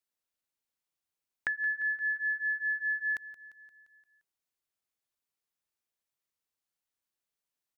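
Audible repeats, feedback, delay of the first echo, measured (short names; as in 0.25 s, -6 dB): 5, 59%, 0.174 s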